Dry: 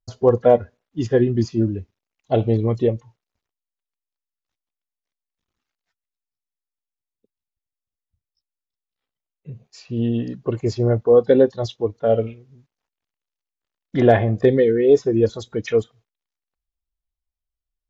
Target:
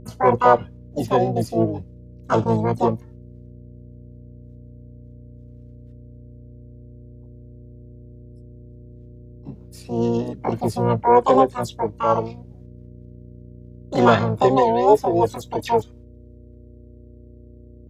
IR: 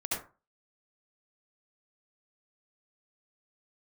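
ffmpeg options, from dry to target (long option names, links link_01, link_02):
-filter_complex "[0:a]aeval=exprs='val(0)+0.00891*(sin(2*PI*60*n/s)+sin(2*PI*2*60*n/s)/2+sin(2*PI*3*60*n/s)/3+sin(2*PI*4*60*n/s)/4+sin(2*PI*5*60*n/s)/5)':channel_layout=same,asplit=3[link_01][link_02][link_03];[link_02]asetrate=66075,aresample=44100,atempo=0.66742,volume=-5dB[link_04];[link_03]asetrate=88200,aresample=44100,atempo=0.5,volume=-2dB[link_05];[link_01][link_04][link_05]amix=inputs=3:normalize=0,volume=-3.5dB"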